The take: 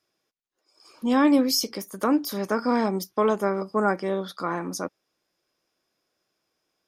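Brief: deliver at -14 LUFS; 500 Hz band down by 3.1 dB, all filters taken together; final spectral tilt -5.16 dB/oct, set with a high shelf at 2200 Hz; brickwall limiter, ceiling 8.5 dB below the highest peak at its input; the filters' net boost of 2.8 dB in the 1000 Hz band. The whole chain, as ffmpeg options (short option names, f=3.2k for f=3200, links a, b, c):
-af "equalizer=f=500:t=o:g=-5,equalizer=f=1k:t=o:g=6.5,highshelf=f=2.2k:g=-8.5,volume=15.5dB,alimiter=limit=-2dB:level=0:latency=1"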